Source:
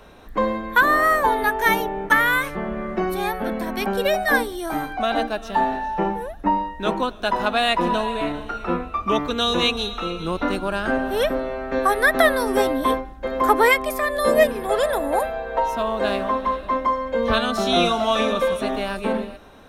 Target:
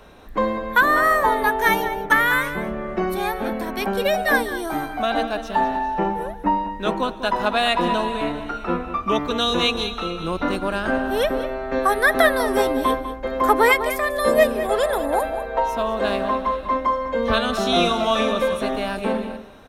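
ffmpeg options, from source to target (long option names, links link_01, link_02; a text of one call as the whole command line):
ffmpeg -i in.wav -filter_complex "[0:a]asplit=2[link_01][link_02];[link_02]adelay=198.3,volume=-11dB,highshelf=frequency=4000:gain=-4.46[link_03];[link_01][link_03]amix=inputs=2:normalize=0" out.wav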